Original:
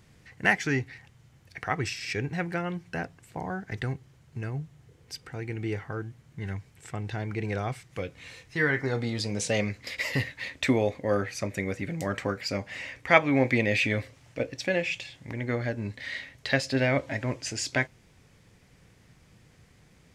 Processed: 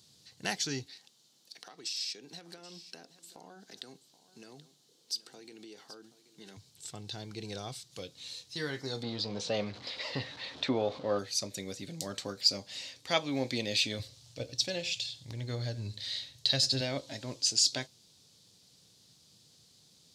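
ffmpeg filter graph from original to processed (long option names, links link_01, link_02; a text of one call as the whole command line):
ffmpeg -i in.wav -filter_complex "[0:a]asettb=1/sr,asplit=3[link_01][link_02][link_03];[link_01]atrim=end=0.864[link_04];[link_02]atrim=start=0.86:end=6.57,asetpts=PTS-STARTPTS,afade=type=in:duration=0.004:curve=qsin,afade=type=out:start_time=5.706:duration=0.004:curve=qsin,highpass=frequency=210:width=0.5412,highpass=frequency=210:width=1.3066,acompressor=threshold=-36dB:ratio=12:attack=3.2:release=140:knee=1:detection=peak,aecho=1:1:779:0.158,atrim=end_sample=251811[link_05];[link_03]atrim=start=6.566[link_06];[link_04][link_05]acrossfade=duration=0.004:curve1=hsin:curve2=qsin[link_07];[link_07][link_06]acrossfade=duration=0.004:curve1=qsin:curve2=hsin,asettb=1/sr,asplit=3[link_08][link_09][link_10];[link_08]atrim=end=9.034[link_11];[link_09]atrim=start=9.03:end=11.19,asetpts=PTS-STARTPTS,afade=type=in:duration=0.004:curve=qsin,afade=type=out:start_time=2.156:duration=0.004:curve=qsin,aeval=exprs='val(0)+0.5*0.015*sgn(val(0))':channel_layout=same,lowpass=2300,equalizer=frequency=1000:width=0.61:gain=7[link_12];[link_10]atrim=start=11.186[link_13];[link_11][link_12]acrossfade=duration=0.004:curve1=hsin:curve2=qsin[link_14];[link_14][link_13]acrossfade=duration=0.004:curve1=qsin:curve2=hsin,asettb=1/sr,asplit=3[link_15][link_16][link_17];[link_15]atrim=end=13.994[link_18];[link_16]atrim=start=13.99:end=16.81,asetpts=PTS-STARTPTS,afade=type=in:duration=0.004:curve=qsin,afade=type=out:start_time=2.816:duration=0.004:curve=qsin,lowshelf=frequency=150:width_type=q:width=1.5:gain=8.5,aecho=1:1:93:0.141,atrim=end_sample=124362[link_19];[link_17]atrim=start=16.806[link_20];[link_18][link_19]acrossfade=duration=0.004:curve1=hsin:curve2=qsin[link_21];[link_21][link_20]acrossfade=duration=0.004:curve1=qsin:curve2=hsin,highpass=120,highshelf=frequency=2900:width_type=q:width=3:gain=12,volume=-9dB" out.wav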